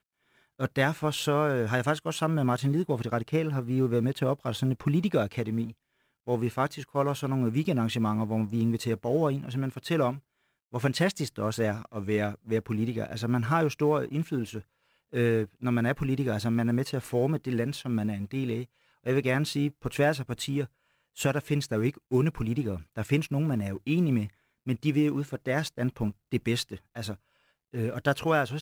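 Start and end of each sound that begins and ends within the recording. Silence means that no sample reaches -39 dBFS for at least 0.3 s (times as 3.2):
0.6–5.71
6.27–10.18
10.74–14.6
15.13–18.65
19.06–20.66
21.17–24.27
24.67–27.14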